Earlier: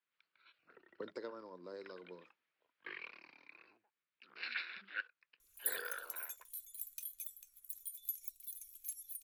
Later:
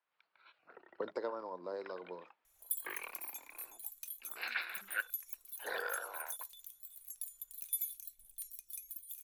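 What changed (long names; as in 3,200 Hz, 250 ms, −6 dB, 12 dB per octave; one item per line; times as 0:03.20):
second sound: entry −2.95 s
master: add parametric band 780 Hz +14 dB 1.3 octaves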